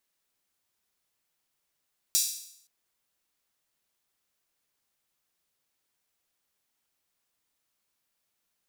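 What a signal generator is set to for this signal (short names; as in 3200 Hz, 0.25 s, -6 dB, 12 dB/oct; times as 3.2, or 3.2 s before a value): open hi-hat length 0.52 s, high-pass 5200 Hz, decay 0.69 s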